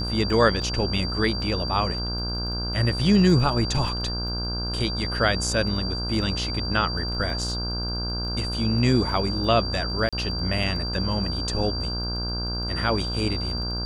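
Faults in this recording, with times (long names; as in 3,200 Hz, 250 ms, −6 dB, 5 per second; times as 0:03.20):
mains buzz 60 Hz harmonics 27 −30 dBFS
surface crackle 17 per second −34 dBFS
whistle 4,700 Hz −30 dBFS
0:00.62: drop-out 2.9 ms
0:10.09–0:10.13: drop-out 36 ms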